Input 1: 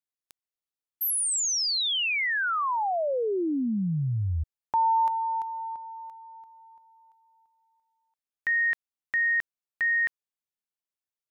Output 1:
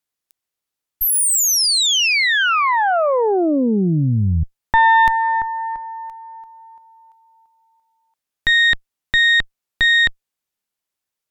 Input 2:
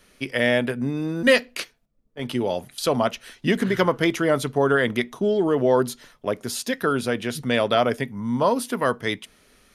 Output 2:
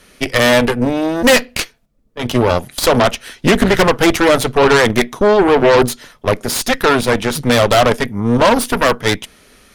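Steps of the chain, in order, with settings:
sine wavefolder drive 6 dB, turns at −5.5 dBFS
harmonic generator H 4 −8 dB, 6 −31 dB, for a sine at −5 dBFS

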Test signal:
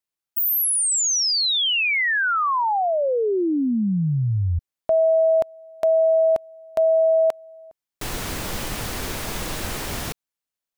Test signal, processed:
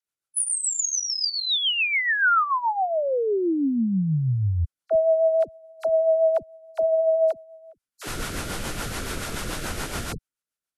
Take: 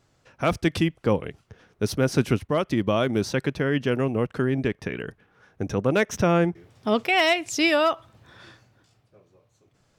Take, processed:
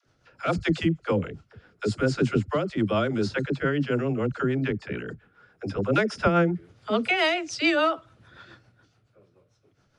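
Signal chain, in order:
hearing-aid frequency compression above 4,000 Hz 1.5 to 1
parametric band 1,400 Hz +8.5 dB 0.23 octaves
all-pass dispersion lows, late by 65 ms, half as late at 360 Hz
rotating-speaker cabinet horn 7 Hz

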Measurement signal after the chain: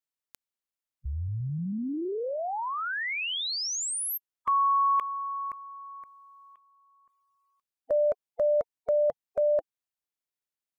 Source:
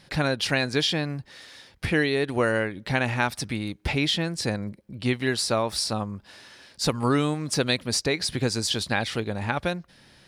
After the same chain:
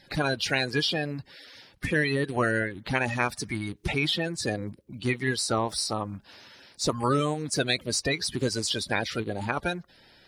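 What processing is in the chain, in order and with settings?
spectral magnitudes quantised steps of 30 dB
level −1.5 dB

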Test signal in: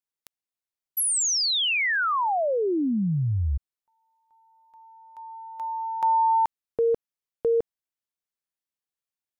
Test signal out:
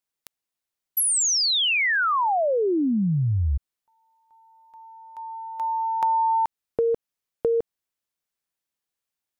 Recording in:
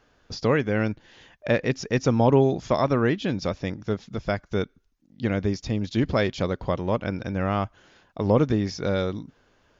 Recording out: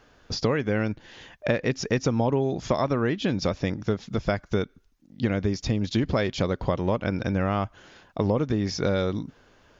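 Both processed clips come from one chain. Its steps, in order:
downward compressor 6 to 1, threshold −25 dBFS
level +5 dB

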